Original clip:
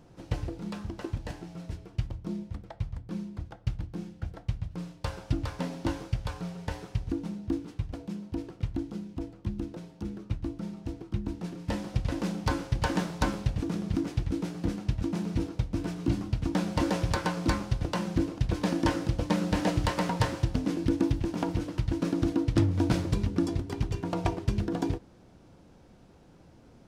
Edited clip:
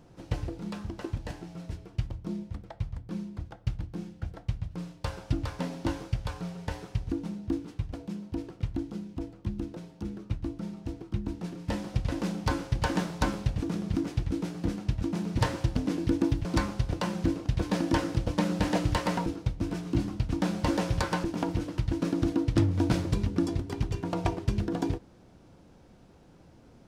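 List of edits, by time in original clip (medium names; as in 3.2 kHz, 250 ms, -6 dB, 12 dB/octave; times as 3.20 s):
15.39–17.37 s: swap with 20.18–21.24 s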